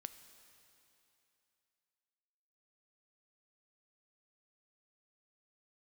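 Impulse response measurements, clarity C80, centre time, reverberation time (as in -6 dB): 12.0 dB, 22 ms, 3.0 s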